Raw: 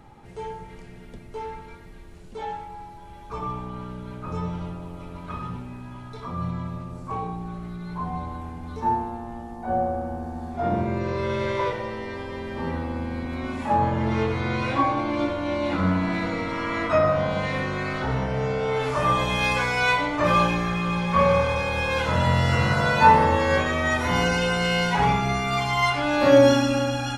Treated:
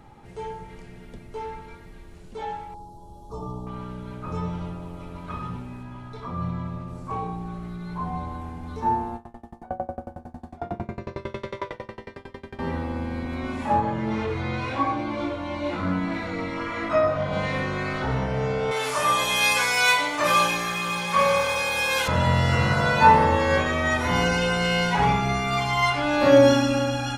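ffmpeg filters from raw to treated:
-filter_complex "[0:a]asettb=1/sr,asplit=3[a][b][c];[a]atrim=end=2.744[d];[b]atrim=start=2.74:end=3.67,asetpts=PTS-STARTPTS,afade=t=in:d=0.004:c=qsin,afade=t=out:st=0.926:d=0.004:c=qsin,asuperstop=centerf=2000:order=4:qfactor=0.52[e];[c]atrim=start=3.666[f];[d][e]acrossfade=d=0.004:c1=hsin:c2=qsin[g];[g][f]acrossfade=d=0.004:c1=qsin:c2=hsin,asettb=1/sr,asplit=3[h][i][j];[h]atrim=end=5.834[k];[i]atrim=start=5.83:end=6.88,asetpts=PTS-STARTPTS,afade=t=in:d=0.004:c=qsin,afade=t=out:st=1.046:d=0.004:c=qsin,highshelf=f=5.2k:g=-6.5[l];[j]atrim=start=6.876[m];[k][l]acrossfade=d=0.004:c1=hsin:c2=qsin[n];[n][m]acrossfade=d=0.004:c1=qsin:c2=hsin,asettb=1/sr,asplit=3[o][p][q];[o]atrim=end=9.164[r];[p]atrim=start=9.16:end=12.59,asetpts=PTS-STARTPTS,afade=t=in:d=0.004:c=qsin,afade=t=out:st=3.426:d=0.004:c=qsin,aeval=exprs='val(0)*pow(10,-28*if(lt(mod(11*n/s,1),2*abs(11)/1000),1-mod(11*n/s,1)/(2*abs(11)/1000),(mod(11*n/s,1)-2*abs(11)/1000)/(1-2*abs(11)/1000))/20)':c=same[s];[q]atrim=start=12.586[t];[r][s]acrossfade=d=0.004:c1=hsin:c2=qsin[u];[u][t]acrossfade=d=0.004:c1=qsin:c2=hsin,asplit=3[v][w][x];[v]afade=t=out:st=13.79:d=0.02[y];[w]flanger=delay=17.5:depth=4.3:speed=1,afade=t=in:st=13.79:d=0.02,afade=t=out:st=17.32:d=0.02[z];[x]afade=t=in:st=17.32:d=0.02[aa];[y][z][aa]amix=inputs=3:normalize=0,asettb=1/sr,asplit=3[ab][ac][ad];[ab]atrim=end=18.714[ae];[ac]atrim=start=18.71:end=22.08,asetpts=PTS-STARTPTS,afade=t=in:d=0.004:c=qsin,afade=t=out:st=3.366:d=0.004:c=qsin,aemphasis=mode=production:type=riaa[af];[ad]atrim=start=22.076[ag];[ae][af]acrossfade=d=0.004:c1=hsin:c2=qsin[ah];[ah][ag]acrossfade=d=0.004:c1=qsin:c2=hsin"

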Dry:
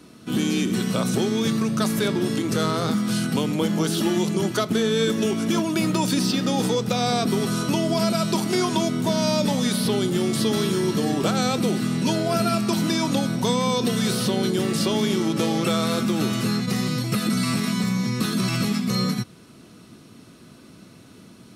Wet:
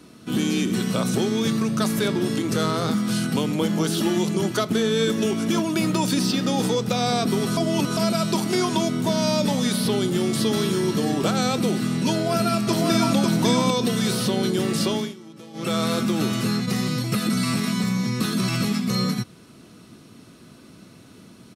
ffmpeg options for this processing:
-filter_complex "[0:a]asplit=2[a][b];[b]afade=t=in:st=12.12:d=0.01,afade=t=out:st=13.15:d=0.01,aecho=0:1:550|1100|1650:0.749894|0.112484|0.0168726[c];[a][c]amix=inputs=2:normalize=0,asplit=5[d][e][f][g][h];[d]atrim=end=7.572[i];[e]atrim=start=7.568:end=7.972,asetpts=PTS-STARTPTS,areverse[j];[f]atrim=start=7.968:end=15.14,asetpts=PTS-STARTPTS,afade=t=out:st=6.842:d=0.33:c=qsin:silence=0.1[k];[g]atrim=start=15.14:end=15.53,asetpts=PTS-STARTPTS,volume=-20dB[l];[h]atrim=start=15.53,asetpts=PTS-STARTPTS,afade=t=in:d=0.33:c=qsin:silence=0.1[m];[i][j]acrossfade=d=0.004:c1=hsin:c2=hsin[n];[k][l][m]concat=n=3:v=0:a=1[o];[n][o]acrossfade=d=0.004:c1=hsin:c2=hsin"

